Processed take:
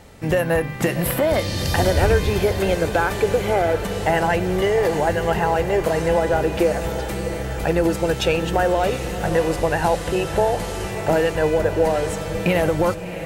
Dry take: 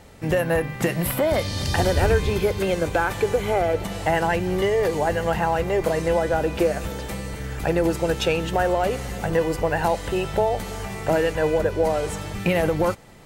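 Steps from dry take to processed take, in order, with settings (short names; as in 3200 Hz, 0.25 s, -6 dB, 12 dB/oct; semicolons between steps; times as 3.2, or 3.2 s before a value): 9.25–10.91 delta modulation 64 kbps, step -33 dBFS; on a send: diffused feedback echo 0.671 s, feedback 54%, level -11 dB; on the sum: gain +2 dB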